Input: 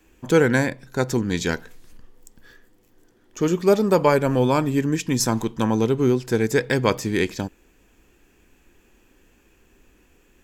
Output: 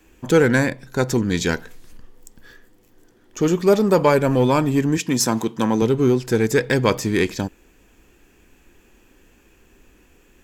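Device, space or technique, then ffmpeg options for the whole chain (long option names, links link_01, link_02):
parallel distortion: -filter_complex "[0:a]asplit=2[link_01][link_02];[link_02]asoftclip=type=hard:threshold=-20dB,volume=-6dB[link_03];[link_01][link_03]amix=inputs=2:normalize=0,asettb=1/sr,asplit=3[link_04][link_05][link_06];[link_04]atrim=end=4.974[link_07];[link_05]atrim=start=4.97:end=5.82,asetpts=PTS-STARTPTS,afade=type=in:duration=0.004:curve=qsin,afade=type=out:start_time=0.846:duration=0.004:curve=qsin,highpass=150[link_08];[link_06]atrim=start=5.816[link_09];[link_07][link_08]acrossfade=duration=0.004:curve1=hsin:curve2=qsin[link_10];[link_10][link_09]acrossfade=duration=0.004:curve1=qsin:curve2=hsin"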